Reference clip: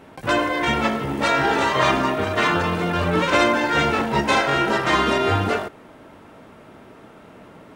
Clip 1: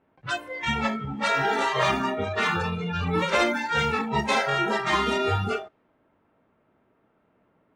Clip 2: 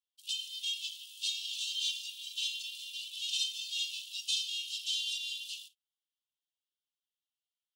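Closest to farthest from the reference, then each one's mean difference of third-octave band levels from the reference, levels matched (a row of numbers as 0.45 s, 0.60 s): 1, 2; 7.0 dB, 27.0 dB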